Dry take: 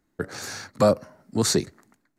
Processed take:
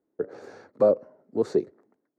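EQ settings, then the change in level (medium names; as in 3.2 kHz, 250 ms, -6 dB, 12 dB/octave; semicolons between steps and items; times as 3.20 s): band-pass filter 450 Hz, Q 2.4; +3.5 dB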